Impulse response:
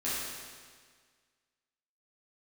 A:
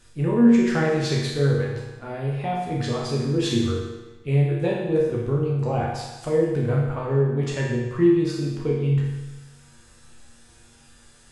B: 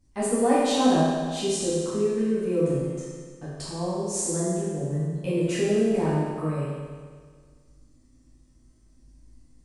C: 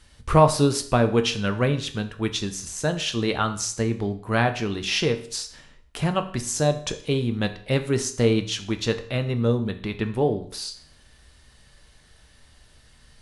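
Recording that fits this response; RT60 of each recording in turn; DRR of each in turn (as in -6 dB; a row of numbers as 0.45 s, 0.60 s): B; 1.1 s, 1.7 s, 0.55 s; -5.0 dB, -11.0 dB, 7.0 dB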